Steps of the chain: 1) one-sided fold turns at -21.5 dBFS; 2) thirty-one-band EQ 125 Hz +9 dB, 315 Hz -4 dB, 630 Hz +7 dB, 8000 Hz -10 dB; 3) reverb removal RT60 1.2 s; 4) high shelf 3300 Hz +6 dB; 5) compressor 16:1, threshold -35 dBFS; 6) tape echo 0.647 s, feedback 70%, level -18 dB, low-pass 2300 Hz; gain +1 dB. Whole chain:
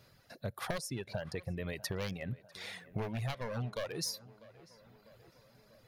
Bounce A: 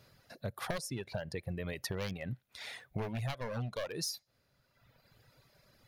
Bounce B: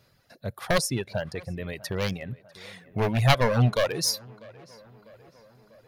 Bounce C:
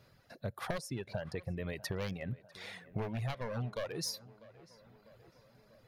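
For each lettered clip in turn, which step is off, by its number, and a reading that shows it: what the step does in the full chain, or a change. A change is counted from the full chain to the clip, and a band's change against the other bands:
6, echo-to-direct -35.0 dB to none; 5, mean gain reduction 9.0 dB; 4, 8 kHz band -2.0 dB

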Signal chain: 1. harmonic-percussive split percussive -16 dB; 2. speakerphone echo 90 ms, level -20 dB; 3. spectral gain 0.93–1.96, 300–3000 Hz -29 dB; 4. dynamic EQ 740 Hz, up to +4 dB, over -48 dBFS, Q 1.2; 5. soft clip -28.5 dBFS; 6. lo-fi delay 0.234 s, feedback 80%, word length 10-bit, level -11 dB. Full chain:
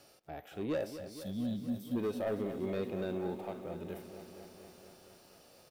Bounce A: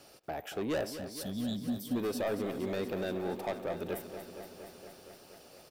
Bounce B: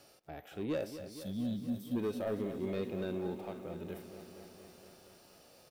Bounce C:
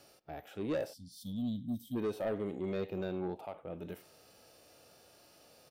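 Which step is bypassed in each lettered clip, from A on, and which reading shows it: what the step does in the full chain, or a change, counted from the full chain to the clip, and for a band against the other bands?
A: 1, 4 kHz band +5.5 dB; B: 4, 1 kHz band -2.5 dB; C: 6, crest factor change -2.0 dB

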